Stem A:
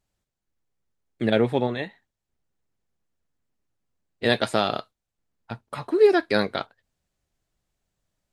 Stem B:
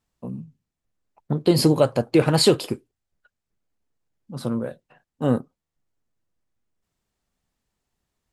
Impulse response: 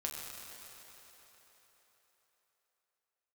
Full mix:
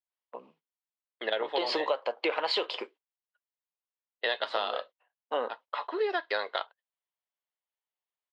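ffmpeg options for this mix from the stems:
-filter_complex "[0:a]bandreject=f=2300:w=5,volume=0.891[s0];[1:a]adelay=100,volume=1.12[s1];[s0][s1]amix=inputs=2:normalize=0,agate=range=0.1:threshold=0.0112:ratio=16:detection=peak,highpass=f=500:w=0.5412,highpass=f=500:w=1.3066,equalizer=f=1000:t=q:w=4:g=6,equalizer=f=2100:t=q:w=4:g=5,equalizer=f=3100:t=q:w=4:g=7,lowpass=f=4300:w=0.5412,lowpass=f=4300:w=1.3066,acompressor=threshold=0.0501:ratio=6"

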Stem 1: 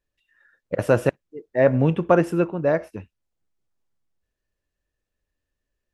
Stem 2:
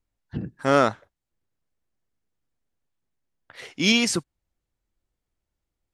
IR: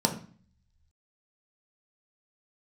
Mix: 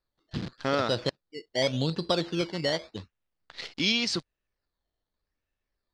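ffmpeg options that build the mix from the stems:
-filter_complex "[0:a]acrusher=samples=14:mix=1:aa=0.000001:lfo=1:lforange=8.4:lforate=0.86,volume=0.631[s0];[1:a]acrusher=bits=7:dc=4:mix=0:aa=0.000001,volume=0.794[s1];[s0][s1]amix=inputs=2:normalize=0,lowpass=f=4400:t=q:w=3.4,acompressor=threshold=0.0398:ratio=2"

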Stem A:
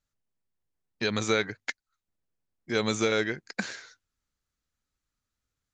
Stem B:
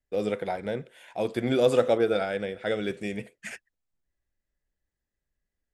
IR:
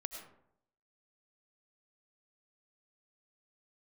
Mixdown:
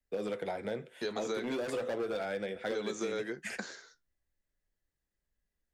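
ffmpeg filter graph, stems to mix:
-filter_complex "[0:a]agate=range=0.0224:threshold=0.00251:ratio=3:detection=peak,equalizer=f=100:t=o:w=0.67:g=-11,equalizer=f=400:t=o:w=0.67:g=5,equalizer=f=2500:t=o:w=0.67:g=-9,volume=0.841[s0];[1:a]asoftclip=type=hard:threshold=0.0794,volume=1.33[s1];[s0][s1]amix=inputs=2:normalize=0,acrossover=split=96|240[s2][s3][s4];[s2]acompressor=threshold=0.001:ratio=4[s5];[s3]acompressor=threshold=0.00794:ratio=4[s6];[s4]acompressor=threshold=0.0631:ratio=4[s7];[s5][s6][s7]amix=inputs=3:normalize=0,flanger=delay=3.7:depth=9.7:regen=-60:speed=0.37:shape=triangular,acompressor=threshold=0.0224:ratio=2.5"

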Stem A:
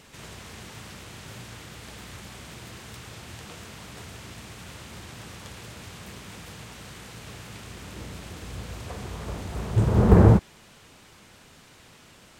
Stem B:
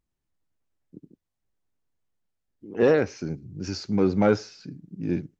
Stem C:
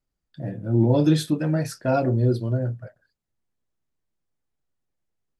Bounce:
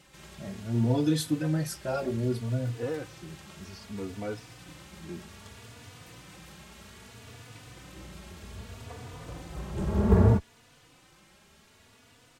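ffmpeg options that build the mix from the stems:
-filter_complex "[0:a]volume=0.668[s0];[1:a]volume=0.251[s1];[2:a]aemphasis=mode=production:type=cd,volume=0.631[s2];[s0][s1][s2]amix=inputs=3:normalize=0,asplit=2[s3][s4];[s4]adelay=3.4,afreqshift=0.63[s5];[s3][s5]amix=inputs=2:normalize=1"

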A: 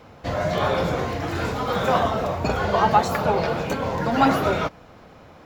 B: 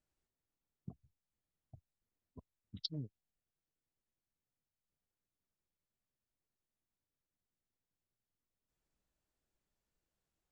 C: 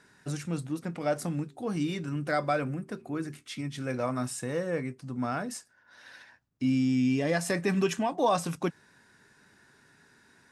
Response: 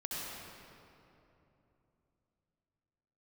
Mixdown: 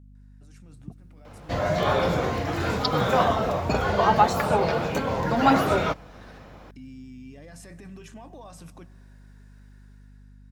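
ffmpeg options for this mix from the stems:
-filter_complex "[0:a]adelay=1250,volume=0.237[s0];[1:a]volume=1.06,asplit=2[s1][s2];[2:a]acompressor=threshold=0.0316:ratio=6,alimiter=level_in=2.82:limit=0.0631:level=0:latency=1:release=20,volume=0.355,adelay=150,volume=0.141,asplit=2[s3][s4];[s4]volume=0.1[s5];[s2]apad=whole_len=470520[s6];[s3][s6]sidechaincompress=threshold=0.00178:ratio=8:attack=30:release=1180[s7];[3:a]atrim=start_sample=2205[s8];[s5][s8]afir=irnorm=-1:irlink=0[s9];[s0][s1][s7][s9]amix=inputs=4:normalize=0,dynaudnorm=f=200:g=9:m=3.98,aeval=exprs='val(0)+0.00398*(sin(2*PI*50*n/s)+sin(2*PI*2*50*n/s)/2+sin(2*PI*3*50*n/s)/3+sin(2*PI*4*50*n/s)/4+sin(2*PI*5*50*n/s)/5)':c=same"

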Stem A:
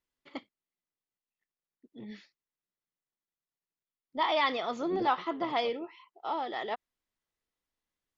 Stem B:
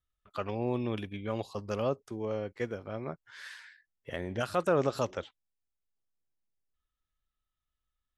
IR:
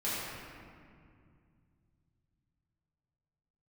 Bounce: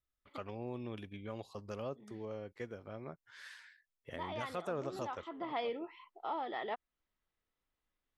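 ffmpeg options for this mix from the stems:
-filter_complex "[0:a]lowpass=3200,acontrast=76,volume=0.501,afade=t=in:st=5.29:d=0.39:silence=0.281838[s0];[1:a]volume=0.501[s1];[s0][s1]amix=inputs=2:normalize=0,acompressor=threshold=0.00562:ratio=1.5"

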